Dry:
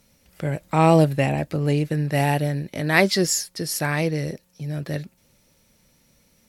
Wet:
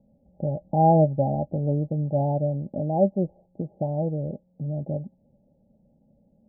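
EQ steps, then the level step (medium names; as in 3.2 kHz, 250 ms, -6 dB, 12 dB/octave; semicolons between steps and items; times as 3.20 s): dynamic bell 250 Hz, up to -6 dB, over -31 dBFS, Q 0.83; rippled Chebyshev low-pass 840 Hz, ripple 9 dB; +5.0 dB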